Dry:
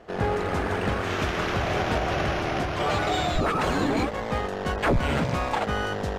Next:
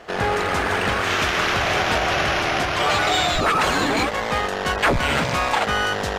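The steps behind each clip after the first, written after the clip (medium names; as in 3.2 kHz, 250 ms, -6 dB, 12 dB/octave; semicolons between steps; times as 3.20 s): tilt shelf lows -6 dB, about 750 Hz; in parallel at -1.5 dB: peak limiter -22.5 dBFS, peak gain reduction 10.5 dB; on the sum: trim +2 dB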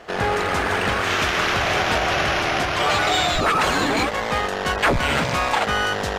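no audible change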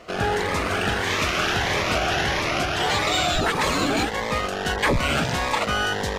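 Shepard-style phaser rising 1.6 Hz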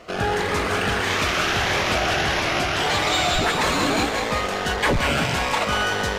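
thinning echo 189 ms, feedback 56%, level -5.5 dB; in parallel at -11 dB: saturation -16.5 dBFS, distortion -17 dB; on the sum: trim -1.5 dB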